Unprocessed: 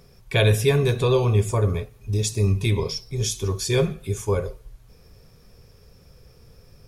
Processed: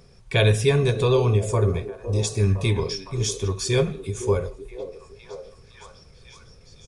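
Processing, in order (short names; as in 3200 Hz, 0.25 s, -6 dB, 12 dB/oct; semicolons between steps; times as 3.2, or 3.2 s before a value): downsampling 22050 Hz; delay with a stepping band-pass 0.51 s, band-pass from 370 Hz, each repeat 0.7 oct, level -7.5 dB; ending taper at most 180 dB/s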